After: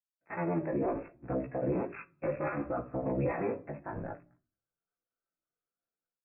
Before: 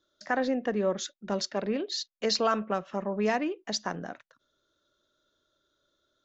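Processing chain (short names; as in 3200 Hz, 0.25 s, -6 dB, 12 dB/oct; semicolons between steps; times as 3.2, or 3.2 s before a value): cycle switcher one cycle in 3, inverted; brick-wall FIR low-pass 2700 Hz; shoebox room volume 690 m³, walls furnished, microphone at 0.76 m; chorus 0.65 Hz, delay 15.5 ms, depth 3.5 ms; AGC gain up to 13 dB; limiter -15 dBFS, peak gain reduction 11 dB; spectral expander 1.5:1; gain -7 dB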